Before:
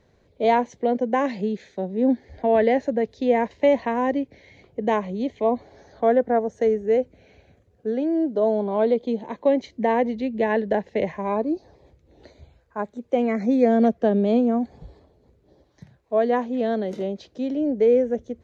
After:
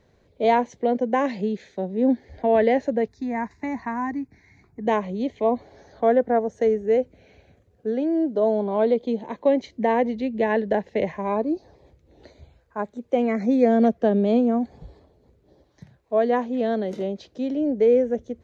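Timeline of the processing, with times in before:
3.08–4.86 s: static phaser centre 1.3 kHz, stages 4

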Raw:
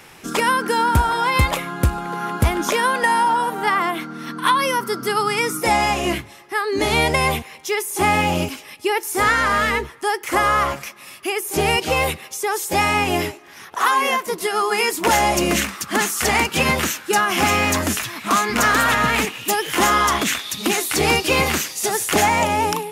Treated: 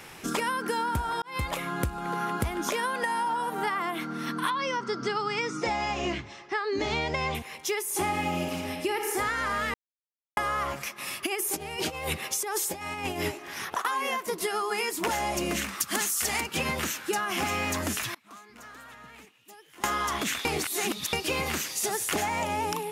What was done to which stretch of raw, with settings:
1.22–1.80 s: fade in
4.50–7.35 s: steep low-pass 6.8 kHz
7.93–9.10 s: reverb throw, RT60 1.2 s, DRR 3 dB
9.74–10.37 s: mute
10.98–13.85 s: compressor with a negative ratio -25 dBFS, ratio -0.5
15.80–16.41 s: treble shelf 3.4 kHz +11.5 dB
18.14–19.84 s: inverted gate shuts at -27 dBFS, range -29 dB
20.45–21.13 s: reverse
whole clip: compression 6:1, threshold -25 dBFS; trim -1.5 dB

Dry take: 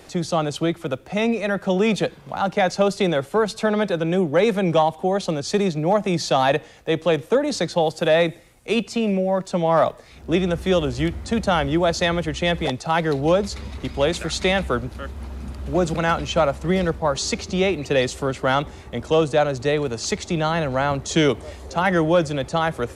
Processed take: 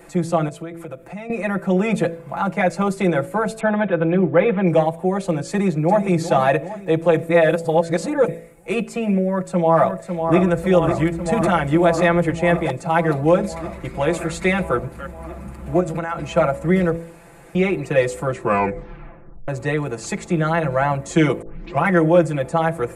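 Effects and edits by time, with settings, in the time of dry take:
0.48–1.30 s: compression 3:1, threshold -34 dBFS
3.60–4.67 s: careless resampling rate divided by 6×, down none, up filtered
5.49–6.05 s: echo throw 390 ms, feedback 60%, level -11 dB
7.29–8.28 s: reverse
9.26–10.36 s: echo throw 550 ms, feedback 80%, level -6.5 dB
11.25–12.31 s: three bands compressed up and down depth 70%
15.80–16.30 s: compression, threshold -24 dBFS
16.96–17.55 s: room tone
18.27 s: tape stop 1.21 s
21.42 s: tape start 0.43 s
whole clip: high-order bell 4.3 kHz -11.5 dB 1.3 oct; comb 5.9 ms, depth 100%; de-hum 55.53 Hz, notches 12; trim -1 dB

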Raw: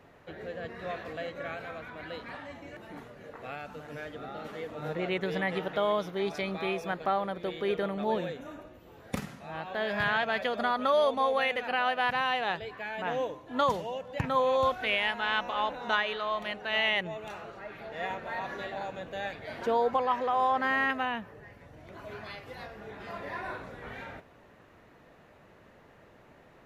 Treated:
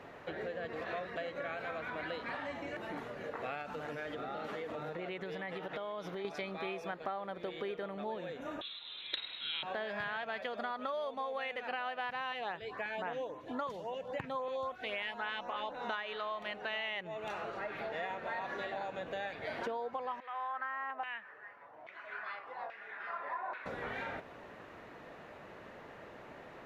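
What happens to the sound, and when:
0.73–1.16 s: reverse
3.62–6.25 s: compression, threshold -40 dBFS
8.61–9.63 s: frequency inversion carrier 4 kHz
12.32–15.75 s: LFO notch saw up 3.7 Hz 630–6200 Hz
20.20–23.66 s: LFO band-pass saw down 1.2 Hz 810–2300 Hz
whole clip: treble shelf 6.4 kHz -10.5 dB; compression 8:1, threshold -43 dBFS; bass shelf 190 Hz -10 dB; trim +7.5 dB

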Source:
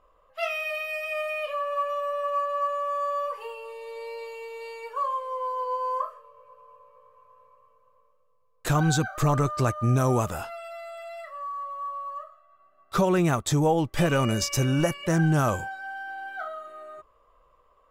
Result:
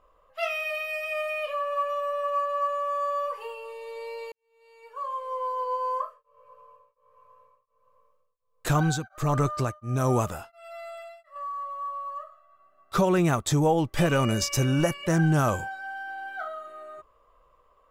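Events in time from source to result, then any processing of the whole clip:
4.32–5.32 s: fade in quadratic
5.88–11.36 s: tremolo of two beating tones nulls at 1.4 Hz

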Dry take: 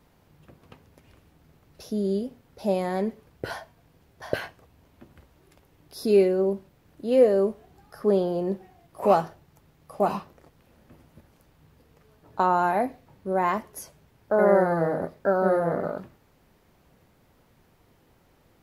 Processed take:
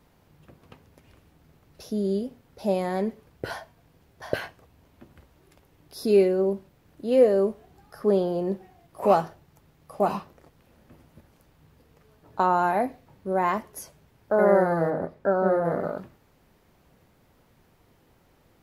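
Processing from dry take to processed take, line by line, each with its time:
14.90–15.65 s: treble shelf 3.4 kHz -10 dB

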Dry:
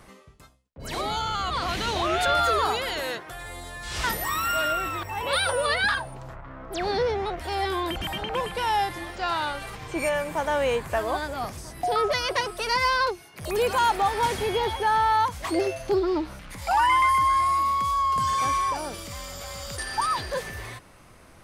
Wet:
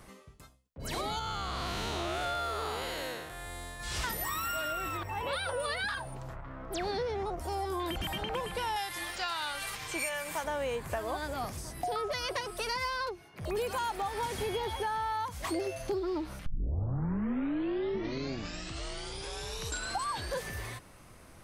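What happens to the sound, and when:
1.19–3.80 s: spectral blur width 200 ms
4.97–5.60 s: treble shelf 4.6 kHz -9 dB
7.23–7.80 s: high-order bell 2.6 kHz -10.5 dB
8.76–10.44 s: tilt shelf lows -8 dB, about 890 Hz
13.09–13.57 s: peaking EQ 12 kHz -14.5 dB 2.1 oct
16.46 s: tape start 3.96 s
whole clip: treble shelf 5.9 kHz +5 dB; compression, threshold -27 dBFS; bass shelf 400 Hz +3 dB; trim -4.5 dB

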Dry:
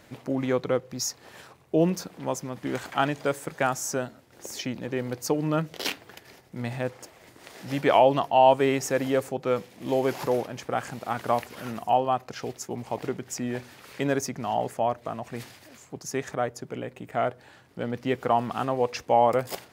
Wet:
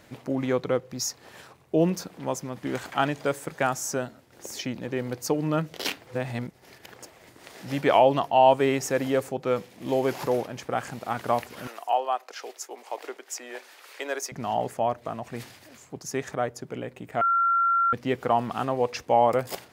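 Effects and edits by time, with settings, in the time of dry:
6.07–6.96 s: reverse
11.67–14.32 s: Bessel high-pass 590 Hz, order 8
17.21–17.93 s: bleep 1.37 kHz -19 dBFS

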